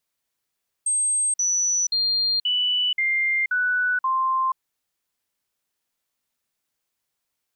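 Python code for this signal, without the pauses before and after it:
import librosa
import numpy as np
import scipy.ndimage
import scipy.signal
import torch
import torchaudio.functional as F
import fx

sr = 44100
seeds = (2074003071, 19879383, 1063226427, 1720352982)

y = fx.stepped_sweep(sr, from_hz=8400.0, direction='down', per_octave=2, tones=7, dwell_s=0.48, gap_s=0.05, level_db=-19.0)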